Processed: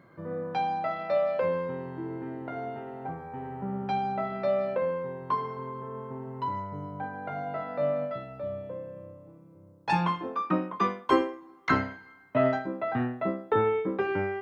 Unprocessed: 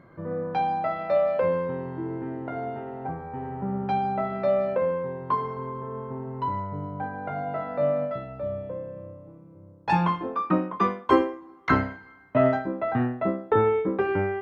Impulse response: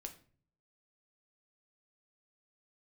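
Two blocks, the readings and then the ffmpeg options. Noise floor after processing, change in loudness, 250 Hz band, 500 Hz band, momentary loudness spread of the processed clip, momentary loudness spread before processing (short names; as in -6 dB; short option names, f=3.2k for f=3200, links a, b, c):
-54 dBFS, -3.5 dB, -4.0 dB, -3.5 dB, 12 LU, 12 LU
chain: -af "highpass=91,highshelf=f=3k:g=9,volume=-4dB"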